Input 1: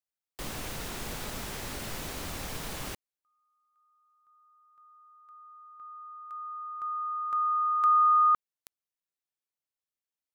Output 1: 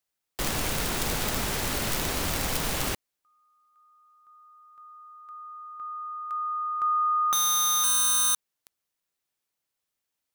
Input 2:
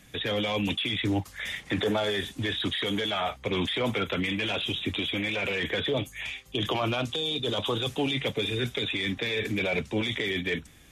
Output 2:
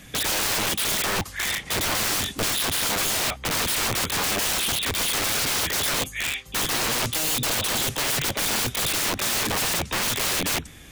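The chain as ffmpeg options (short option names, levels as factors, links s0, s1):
-af "aeval=exprs='(mod(26.6*val(0)+1,2)-1)/26.6':c=same,volume=2.82"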